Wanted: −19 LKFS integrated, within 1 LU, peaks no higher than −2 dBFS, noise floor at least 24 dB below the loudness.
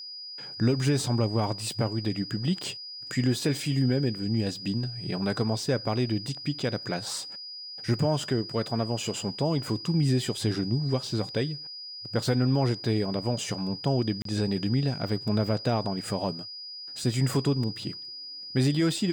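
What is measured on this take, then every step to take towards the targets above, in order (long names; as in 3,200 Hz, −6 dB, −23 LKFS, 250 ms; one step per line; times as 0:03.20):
number of dropouts 1; longest dropout 33 ms; interfering tone 4,900 Hz; level of the tone −38 dBFS; integrated loudness −28.5 LKFS; sample peak −14.5 dBFS; target loudness −19.0 LKFS
→ repair the gap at 0:14.22, 33 ms
notch filter 4,900 Hz, Q 30
level +9.5 dB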